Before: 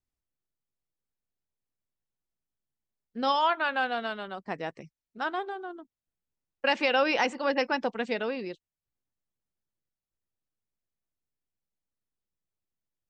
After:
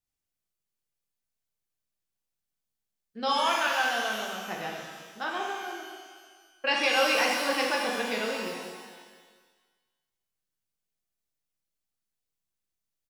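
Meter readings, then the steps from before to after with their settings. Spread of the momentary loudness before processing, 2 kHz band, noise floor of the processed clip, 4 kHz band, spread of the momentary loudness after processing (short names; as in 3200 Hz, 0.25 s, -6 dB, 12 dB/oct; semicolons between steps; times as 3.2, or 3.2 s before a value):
15 LU, +2.5 dB, under -85 dBFS, +5.0 dB, 17 LU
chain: high shelf 2100 Hz +7.5 dB; feedback echo 0.223 s, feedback 47%, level -15 dB; shimmer reverb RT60 1.3 s, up +12 st, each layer -8 dB, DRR -1.5 dB; gain -5.5 dB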